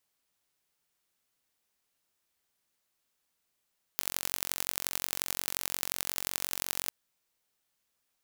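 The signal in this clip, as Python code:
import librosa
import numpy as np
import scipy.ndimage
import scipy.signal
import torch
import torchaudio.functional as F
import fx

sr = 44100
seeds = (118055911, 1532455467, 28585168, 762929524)

y = fx.impulse_train(sr, length_s=2.9, per_s=45.6, accent_every=4, level_db=-2.0)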